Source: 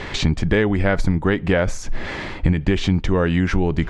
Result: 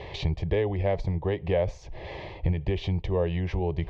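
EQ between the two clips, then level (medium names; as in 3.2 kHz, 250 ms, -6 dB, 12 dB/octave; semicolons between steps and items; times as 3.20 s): high-pass 43 Hz; distance through air 240 m; static phaser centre 590 Hz, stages 4; -3.5 dB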